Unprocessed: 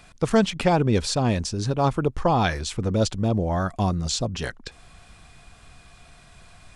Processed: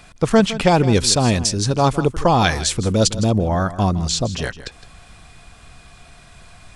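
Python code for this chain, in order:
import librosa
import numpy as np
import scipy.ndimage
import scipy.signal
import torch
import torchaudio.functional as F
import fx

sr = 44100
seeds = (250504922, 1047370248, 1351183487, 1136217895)

y = fx.high_shelf(x, sr, hz=4200.0, db=10.0, at=(0.67, 3.38))
y = y + 10.0 ** (-15.0 / 20.0) * np.pad(y, (int(162 * sr / 1000.0), 0))[:len(y)]
y = y * librosa.db_to_amplitude(5.0)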